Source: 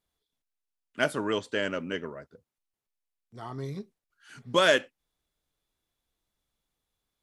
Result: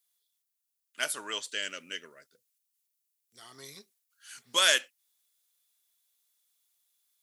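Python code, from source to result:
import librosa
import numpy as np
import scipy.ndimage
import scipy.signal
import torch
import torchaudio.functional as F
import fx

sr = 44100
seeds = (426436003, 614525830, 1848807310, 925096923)

y = np.diff(x, prepend=0.0)
y = fx.rider(y, sr, range_db=4, speed_s=0.5)
y = fx.peak_eq(y, sr, hz=930.0, db=-11.0, octaves=1.0, at=(1.48, 3.55))
y = F.gain(torch.from_numpy(y), 7.0).numpy()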